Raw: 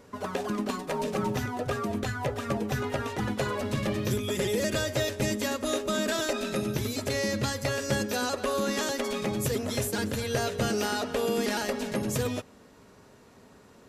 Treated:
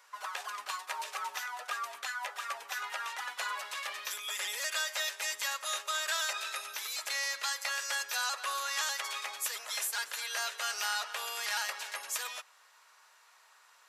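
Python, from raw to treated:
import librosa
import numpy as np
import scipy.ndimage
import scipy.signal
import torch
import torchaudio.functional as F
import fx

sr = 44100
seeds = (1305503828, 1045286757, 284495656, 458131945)

y = scipy.signal.sosfilt(scipy.signal.butter(4, 970.0, 'highpass', fs=sr, output='sos'), x)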